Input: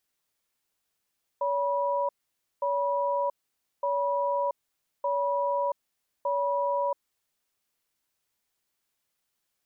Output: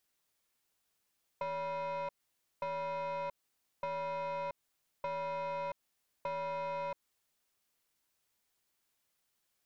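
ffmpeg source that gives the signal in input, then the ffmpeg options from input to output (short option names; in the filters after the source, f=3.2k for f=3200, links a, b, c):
-f lavfi -i "aevalsrc='0.0447*(sin(2*PI*567*t)+sin(2*PI*973*t))*clip(min(mod(t,1.21),0.68-mod(t,1.21))/0.005,0,1)':d=5.55:s=44100"
-af "aeval=exprs='(tanh(31.6*val(0)+0.15)-tanh(0.15))/31.6':c=same,acompressor=threshold=-36dB:ratio=6"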